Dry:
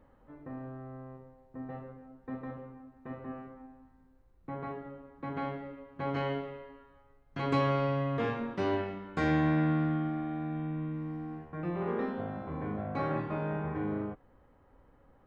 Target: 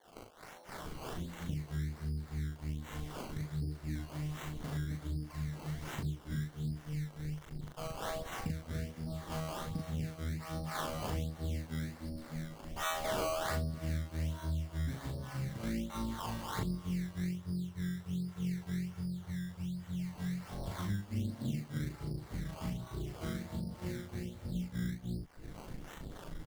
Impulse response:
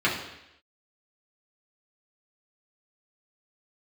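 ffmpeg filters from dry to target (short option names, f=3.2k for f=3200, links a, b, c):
-filter_complex "[0:a]acrusher=bits=9:mix=0:aa=0.000001,asetrate=25442,aresample=44100,bass=f=250:g=14,treble=f=4k:g=9,acrossover=split=680|3300[a][b][c];[c]adelay=150[d];[a]adelay=690[e];[e][b][d]amix=inputs=3:normalize=0,acrossover=split=760[f][g];[f]aeval=exprs='val(0)*(1-1/2+1/2*cos(2*PI*3.3*n/s))':c=same[h];[g]aeval=exprs='val(0)*(1-1/2-1/2*cos(2*PI*3.3*n/s))':c=same[i];[h][i]amix=inputs=2:normalize=0,acompressor=threshold=-48dB:ratio=6,lowshelf=f=270:g=-7.5,acrusher=samples=17:mix=1:aa=0.000001:lfo=1:lforange=17:lforate=1.3,bandreject=f=2.5k:w=13,asplit=2[j][k];[k]adelay=39,volume=-2.5dB[l];[j][l]amix=inputs=2:normalize=0,volume=15dB"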